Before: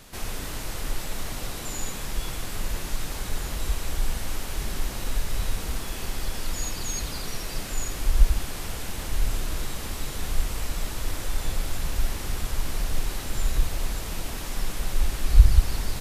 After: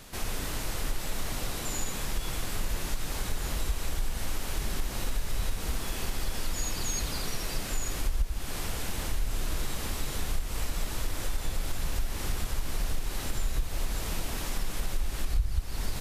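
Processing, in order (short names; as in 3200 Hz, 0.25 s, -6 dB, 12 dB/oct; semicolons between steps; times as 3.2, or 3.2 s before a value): compressor 5:1, threshold -24 dBFS, peak gain reduction 16 dB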